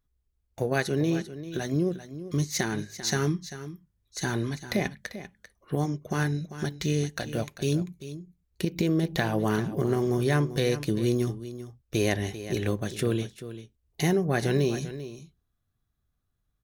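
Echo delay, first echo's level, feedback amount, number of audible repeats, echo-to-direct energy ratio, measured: 393 ms, −13.0 dB, repeats not evenly spaced, 1, −13.0 dB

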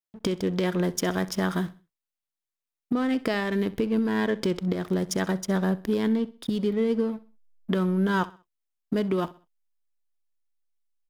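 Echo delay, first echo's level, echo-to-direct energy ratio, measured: 64 ms, −19.0 dB, −18.5 dB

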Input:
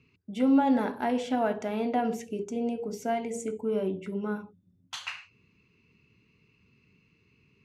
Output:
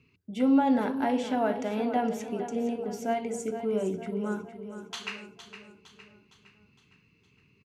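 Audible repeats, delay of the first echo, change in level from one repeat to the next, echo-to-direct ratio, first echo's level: 5, 461 ms, −6.0 dB, −9.5 dB, −11.0 dB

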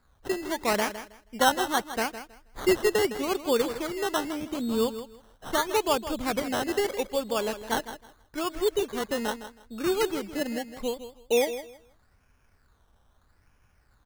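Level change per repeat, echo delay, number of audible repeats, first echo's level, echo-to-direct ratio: −13.5 dB, 160 ms, 2, −12.0 dB, −12.0 dB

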